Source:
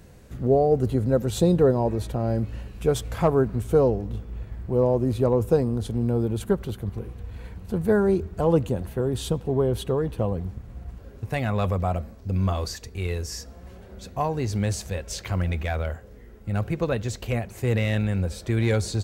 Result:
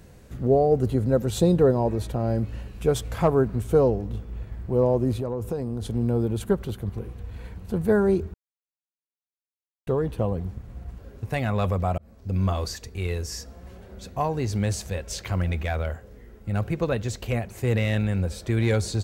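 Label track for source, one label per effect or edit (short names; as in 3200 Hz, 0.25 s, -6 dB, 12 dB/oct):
5.180000	5.830000	compressor 5:1, threshold -25 dBFS
8.340000	9.870000	mute
11.980000	12.450000	fade in equal-power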